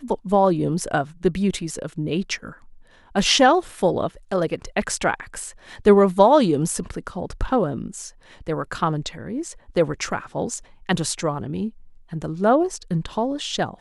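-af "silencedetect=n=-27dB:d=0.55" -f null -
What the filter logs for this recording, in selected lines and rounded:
silence_start: 2.49
silence_end: 3.15 | silence_duration: 0.67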